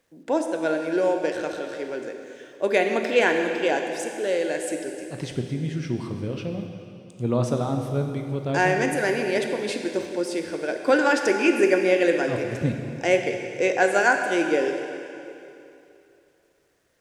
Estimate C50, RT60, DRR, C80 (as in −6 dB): 5.0 dB, 2.8 s, 4.0 dB, 6.0 dB